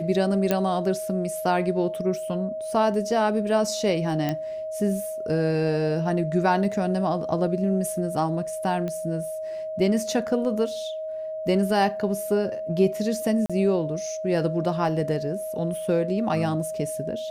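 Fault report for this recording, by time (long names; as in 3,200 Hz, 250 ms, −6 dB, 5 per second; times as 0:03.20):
whistle 630 Hz −29 dBFS
0:00.51: click −8 dBFS
0:04.29: click −13 dBFS
0:08.88: click −19 dBFS
0:13.46–0:13.50: drop-out 36 ms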